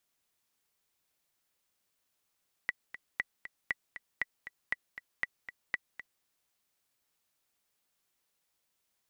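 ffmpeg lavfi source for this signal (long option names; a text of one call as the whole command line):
ffmpeg -f lavfi -i "aevalsrc='pow(10,(-17-12.5*gte(mod(t,2*60/236),60/236))/20)*sin(2*PI*1960*mod(t,60/236))*exp(-6.91*mod(t,60/236)/0.03)':duration=3.55:sample_rate=44100" out.wav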